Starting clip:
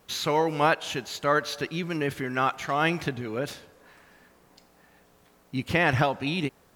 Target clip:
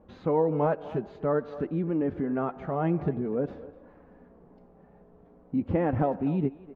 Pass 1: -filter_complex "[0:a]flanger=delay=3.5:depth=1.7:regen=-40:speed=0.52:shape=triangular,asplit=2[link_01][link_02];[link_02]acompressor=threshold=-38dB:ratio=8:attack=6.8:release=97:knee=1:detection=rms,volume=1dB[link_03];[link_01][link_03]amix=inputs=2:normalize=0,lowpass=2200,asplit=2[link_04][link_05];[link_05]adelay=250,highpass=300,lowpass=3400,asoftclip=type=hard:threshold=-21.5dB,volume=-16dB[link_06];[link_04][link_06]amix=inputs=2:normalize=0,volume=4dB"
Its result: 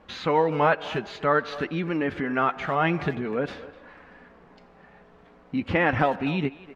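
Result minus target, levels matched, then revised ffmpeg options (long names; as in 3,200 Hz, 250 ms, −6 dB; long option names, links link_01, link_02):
2,000 Hz band +13.5 dB
-filter_complex "[0:a]flanger=delay=3.5:depth=1.7:regen=-40:speed=0.52:shape=triangular,asplit=2[link_01][link_02];[link_02]acompressor=threshold=-38dB:ratio=8:attack=6.8:release=97:knee=1:detection=rms,volume=1dB[link_03];[link_01][link_03]amix=inputs=2:normalize=0,lowpass=590,asplit=2[link_04][link_05];[link_05]adelay=250,highpass=300,lowpass=3400,asoftclip=type=hard:threshold=-21.5dB,volume=-16dB[link_06];[link_04][link_06]amix=inputs=2:normalize=0,volume=4dB"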